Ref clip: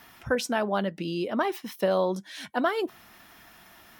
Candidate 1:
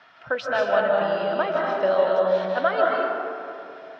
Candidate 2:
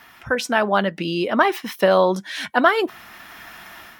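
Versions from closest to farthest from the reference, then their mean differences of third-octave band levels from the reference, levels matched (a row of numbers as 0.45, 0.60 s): 2, 1; 2.0, 12.0 dB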